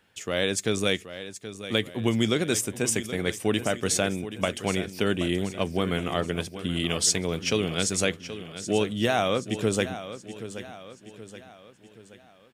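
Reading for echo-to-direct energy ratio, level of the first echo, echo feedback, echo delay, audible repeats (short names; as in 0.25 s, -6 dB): -11.5 dB, -12.5 dB, 47%, 0.776 s, 4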